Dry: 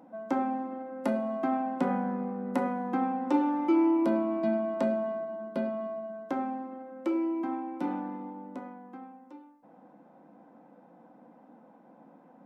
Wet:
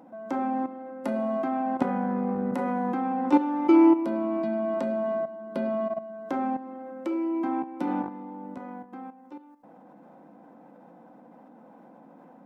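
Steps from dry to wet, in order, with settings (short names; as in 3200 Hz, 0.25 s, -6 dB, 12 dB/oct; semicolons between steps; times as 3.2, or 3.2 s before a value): level quantiser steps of 12 dB; gain +8.5 dB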